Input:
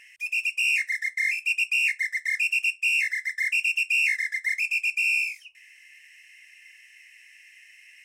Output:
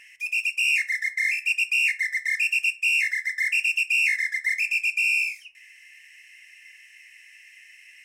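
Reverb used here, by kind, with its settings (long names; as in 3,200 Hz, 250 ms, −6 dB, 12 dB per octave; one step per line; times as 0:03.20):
feedback delay network reverb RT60 0.79 s, low-frequency decay 1.3×, high-frequency decay 0.35×, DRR 9.5 dB
level +1.5 dB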